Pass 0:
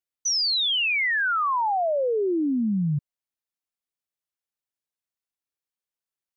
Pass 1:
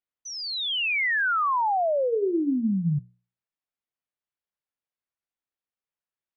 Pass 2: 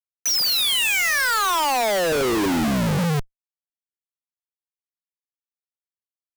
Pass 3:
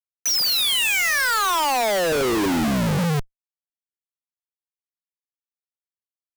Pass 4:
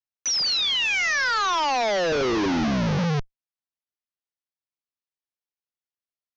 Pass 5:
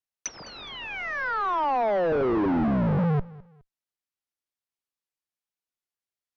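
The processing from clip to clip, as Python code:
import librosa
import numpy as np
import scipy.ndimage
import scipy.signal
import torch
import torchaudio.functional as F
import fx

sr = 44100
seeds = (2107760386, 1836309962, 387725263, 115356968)

y1 = scipy.signal.sosfilt(scipy.signal.butter(2, 2900.0, 'lowpass', fs=sr, output='sos'), x)
y1 = fx.hum_notches(y1, sr, base_hz=60, count=8)
y2 = y1 + 10.0 ** (-4.0 / 20.0) * np.pad(y1, (int(207 * sr / 1000.0), 0))[:len(y1)]
y2 = fx.schmitt(y2, sr, flips_db=-39.0)
y2 = F.gain(torch.from_numpy(y2), 6.5).numpy()
y3 = y2
y4 = scipy.signal.sosfilt(scipy.signal.butter(12, 6300.0, 'lowpass', fs=sr, output='sos'), y3)
y4 = F.gain(torch.from_numpy(y4), -2.0).numpy()
y5 = fx.env_lowpass_down(y4, sr, base_hz=1200.0, full_db=-23.0)
y5 = fx.echo_feedback(y5, sr, ms=208, feedback_pct=31, wet_db=-21.5)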